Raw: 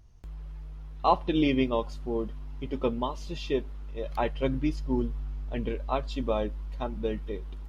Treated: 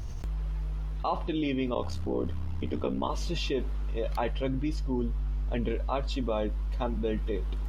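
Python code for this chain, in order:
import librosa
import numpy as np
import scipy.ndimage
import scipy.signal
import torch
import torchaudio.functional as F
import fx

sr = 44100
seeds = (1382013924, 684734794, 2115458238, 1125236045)

y = fx.rider(x, sr, range_db=4, speed_s=0.5)
y = fx.ring_mod(y, sr, carrier_hz=33.0, at=(1.74, 3.08), fade=0.02)
y = fx.env_flatten(y, sr, amount_pct=70)
y = y * librosa.db_to_amplitude(-5.5)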